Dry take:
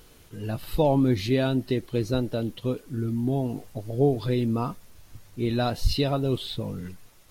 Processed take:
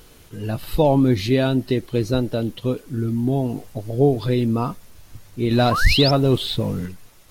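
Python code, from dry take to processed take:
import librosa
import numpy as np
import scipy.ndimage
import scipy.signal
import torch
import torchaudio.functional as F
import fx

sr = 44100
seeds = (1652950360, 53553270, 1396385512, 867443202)

y = fx.leveller(x, sr, passes=1, at=(5.51, 6.86))
y = fx.spec_paint(y, sr, seeds[0], shape='rise', start_s=5.71, length_s=0.4, low_hz=980.0, high_hz=5600.0, level_db=-27.0)
y = F.gain(torch.from_numpy(y), 5.0).numpy()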